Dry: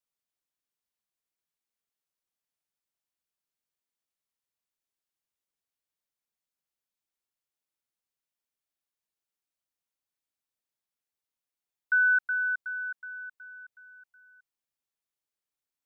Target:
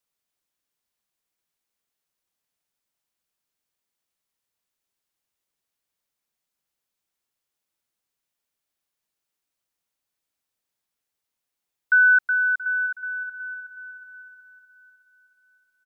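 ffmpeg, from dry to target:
-filter_complex "[0:a]asplit=2[a][b];[b]adelay=678,lowpass=f=1.3k:p=1,volume=-14dB,asplit=2[c][d];[d]adelay=678,lowpass=f=1.3k:p=1,volume=0.54,asplit=2[e][f];[f]adelay=678,lowpass=f=1.3k:p=1,volume=0.54,asplit=2[g][h];[h]adelay=678,lowpass=f=1.3k:p=1,volume=0.54,asplit=2[i][j];[j]adelay=678,lowpass=f=1.3k:p=1,volume=0.54[k];[a][c][e][g][i][k]amix=inputs=6:normalize=0,volume=7dB"

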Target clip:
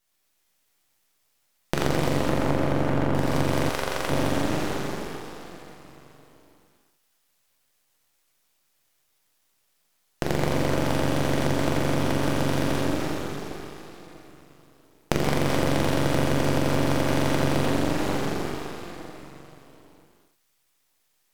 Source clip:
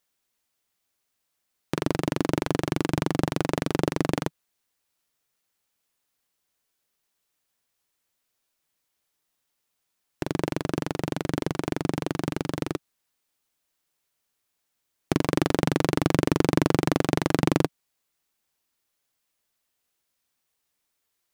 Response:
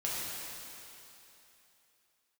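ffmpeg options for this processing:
-filter_complex "[0:a]asettb=1/sr,asplit=3[a][b][c];[a]atrim=end=2.174[d];[b]atrim=start=2.17:end=3.12,asetpts=PTS-STARTPTS,afade=t=in:d=0.004:c=qsin,afade=t=out:st=0.946:d=0.004:c=qsin,lowpass=1.6k[e];[c]atrim=start=3.116[f];[d][e]acrossfade=d=0.004:c1=hsin:c2=qsin[g];[g][f]acrossfade=d=0.004:c1=qsin:c2=hsin[h];[1:a]atrim=start_sample=2205,asetrate=37926,aresample=44100[i];[h][i]afir=irnorm=-1:irlink=0,acompressor=threshold=-22dB:ratio=6,asettb=1/sr,asplit=3[j][k][l];[j]atrim=end=3.694[m];[k]atrim=start=3.69:end=4.1,asetpts=PTS-STARTPTS,afade=t=in:d=0.004:c=qsin,afade=t=out:st=0.406:d=0.004:c=qsin,highpass=490[n];[l]atrim=start=4.096[o];[m][n]acrossfade=d=0.004:c1=hsin:c2=qsin[p];[p][o]acrossfade=d=0.004:c1=qsin:c2=hsin,aeval=exprs='max(val(0),0)':c=same,volume=5.5dB"

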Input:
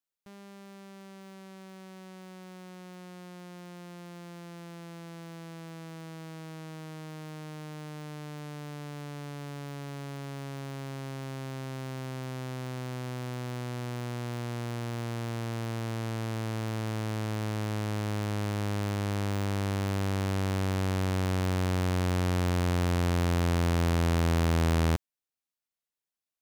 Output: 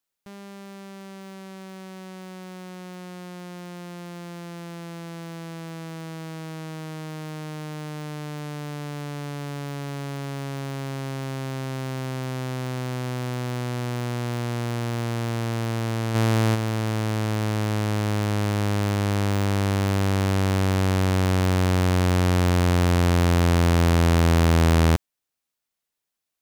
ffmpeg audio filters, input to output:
-filter_complex "[0:a]asplit=3[a][b][c];[a]afade=t=out:st=16.14:d=0.02[d];[b]acontrast=37,afade=t=in:st=16.14:d=0.02,afade=t=out:st=16.54:d=0.02[e];[c]afade=t=in:st=16.54:d=0.02[f];[d][e][f]amix=inputs=3:normalize=0,volume=7.5dB"

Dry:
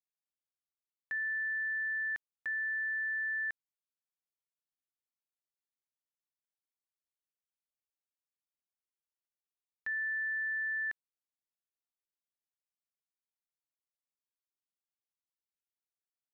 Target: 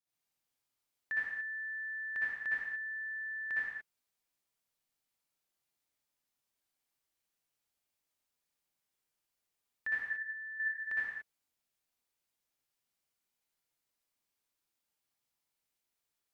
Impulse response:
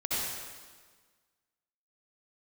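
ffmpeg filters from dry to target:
-filter_complex "[0:a]asettb=1/sr,asplit=3[a][b][c];[a]atrim=end=10.044[d];[b]atrim=start=10.04:end=10.6,asetpts=PTS-STARTPTS,afade=t=in:d=0.004:c=qsin,afade=t=out:st=0.556:d=0.004:c=qsin,lowpass=f=1.6k:p=1[e];[c]atrim=start=10.596[f];[d][e]acrossfade=d=0.004:c1=hsin:c2=qsin[g];[g][f]acrossfade=d=0.004:c1=qsin:c2=hsin[h];[1:a]atrim=start_sample=2205,afade=t=out:st=0.38:d=0.01,atrim=end_sample=17199,asetrate=48510,aresample=44100[i];[h][i]afir=irnorm=-1:irlink=0,volume=3dB"

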